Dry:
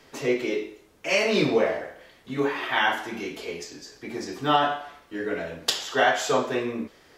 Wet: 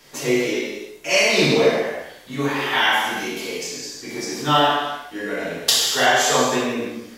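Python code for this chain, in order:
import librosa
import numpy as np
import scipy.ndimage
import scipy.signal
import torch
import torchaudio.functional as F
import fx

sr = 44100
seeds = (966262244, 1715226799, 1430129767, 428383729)

y = fx.high_shelf(x, sr, hz=4300.0, db=11.5)
y = fx.rev_gated(y, sr, seeds[0], gate_ms=380, shape='falling', drr_db=-5.0)
y = y * librosa.db_to_amplitude(-1.5)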